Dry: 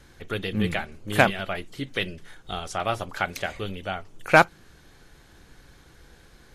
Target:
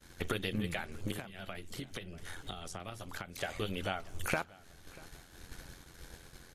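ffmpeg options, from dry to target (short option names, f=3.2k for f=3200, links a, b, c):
-filter_complex "[0:a]highshelf=f=5.9k:g=9,agate=range=-33dB:threshold=-44dB:ratio=3:detection=peak,acompressor=threshold=-37dB:ratio=12,tremolo=f=87:d=0.621,asplit=2[a][b];[b]adelay=639,lowpass=f=4k:p=1,volume=-21.5dB,asplit=2[c][d];[d]adelay=639,lowpass=f=4k:p=1,volume=0.41,asplit=2[e][f];[f]adelay=639,lowpass=f=4k:p=1,volume=0.41[g];[a][c][e][g]amix=inputs=4:normalize=0,asettb=1/sr,asplit=3[h][i][j];[h]atrim=end=1.114[k];[i]atrim=start=1.11:end=3.38,asetpts=PTS-STARTPTS,afade=t=in:d=0.004:c=qsin,afade=t=out:st=2.266:d=0.004:c=qsin,acrossover=split=330|1400[l][m][n];[l]acompressor=threshold=-51dB:ratio=4[o];[m]acompressor=threshold=-56dB:ratio=4[p];[n]acompressor=threshold=-55dB:ratio=4[q];[o][p][q]amix=inputs=3:normalize=0[r];[j]atrim=start=3.376[s];[k][r]acrossfade=d=0.004:c1=hsin:c2=qsin[t];[t][s]acrossfade=d=0.004:c1=qsin:c2=hsin,volume=8dB"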